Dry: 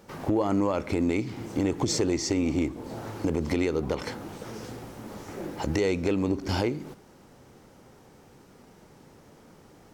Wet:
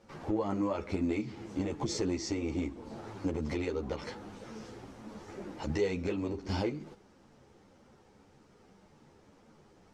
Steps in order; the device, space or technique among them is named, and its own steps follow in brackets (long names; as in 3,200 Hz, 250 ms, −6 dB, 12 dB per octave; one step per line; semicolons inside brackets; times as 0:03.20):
string-machine ensemble chorus (string-ensemble chorus; low-pass filter 7,200 Hz 12 dB per octave)
level −4 dB